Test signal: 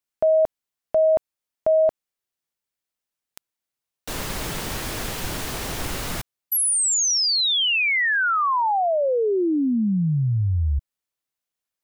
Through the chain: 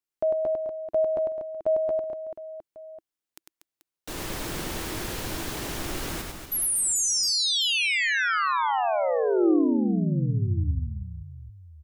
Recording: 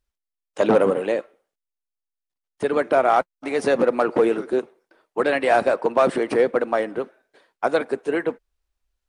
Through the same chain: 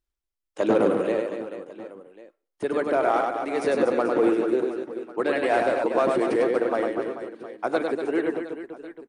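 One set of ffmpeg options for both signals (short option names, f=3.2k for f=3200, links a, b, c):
-filter_complex "[0:a]equalizer=f=330:w=3.8:g=7,asplit=2[a][b];[b]aecho=0:1:100|240|436|710.4|1095:0.631|0.398|0.251|0.158|0.1[c];[a][c]amix=inputs=2:normalize=0,volume=-6dB"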